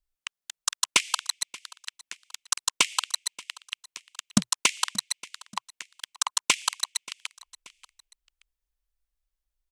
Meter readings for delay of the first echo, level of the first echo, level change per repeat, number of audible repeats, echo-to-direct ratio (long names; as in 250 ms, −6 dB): 581 ms, −21.0 dB, −6.5 dB, 2, −20.0 dB